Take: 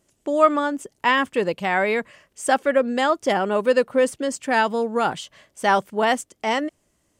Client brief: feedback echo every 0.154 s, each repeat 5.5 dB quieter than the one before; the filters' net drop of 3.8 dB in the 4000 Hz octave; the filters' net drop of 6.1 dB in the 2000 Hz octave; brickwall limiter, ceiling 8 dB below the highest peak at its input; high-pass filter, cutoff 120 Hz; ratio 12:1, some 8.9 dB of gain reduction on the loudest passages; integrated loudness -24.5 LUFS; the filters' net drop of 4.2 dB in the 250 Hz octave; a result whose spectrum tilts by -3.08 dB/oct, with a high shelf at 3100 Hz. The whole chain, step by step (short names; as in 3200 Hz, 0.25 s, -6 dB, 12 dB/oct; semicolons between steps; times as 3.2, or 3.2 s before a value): HPF 120 Hz; bell 250 Hz -4.5 dB; bell 2000 Hz -8 dB; high shelf 3100 Hz +4 dB; bell 4000 Hz -4.5 dB; compressor 12:1, threshold -21 dBFS; limiter -20.5 dBFS; feedback echo 0.154 s, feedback 53%, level -5.5 dB; gain +5 dB